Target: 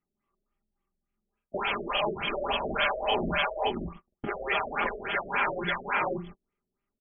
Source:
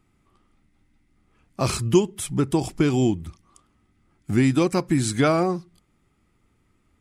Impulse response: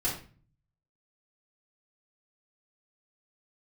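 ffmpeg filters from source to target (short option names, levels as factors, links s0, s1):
-filter_complex "[0:a]afftfilt=real='re':imag='-im':win_size=4096:overlap=0.75,agate=range=0.00708:threshold=0.002:ratio=16:detection=peak,afftfilt=real='re*lt(hypot(re,im),0.0562)':imag='im*lt(hypot(re,im),0.0562)':win_size=1024:overlap=0.75,acrossover=split=5800[s0][s1];[s1]acompressor=threshold=0.00501:ratio=4:attack=1:release=60[s2];[s0][s2]amix=inputs=2:normalize=0,bass=f=250:g=-8,treble=f=4000:g=9,aecho=1:1:5:0.53,asplit=2[s3][s4];[s4]aecho=0:1:536:0.316[s5];[s3][s5]amix=inputs=2:normalize=0,apsyclip=35.5,areverse,acompressor=threshold=0.1:ratio=10,areverse,afftfilt=real='re*lt(b*sr/1024,670*pow(3500/670,0.5+0.5*sin(2*PI*3.5*pts/sr)))':imag='im*lt(b*sr/1024,670*pow(3500/670,0.5+0.5*sin(2*PI*3.5*pts/sr)))':win_size=1024:overlap=0.75"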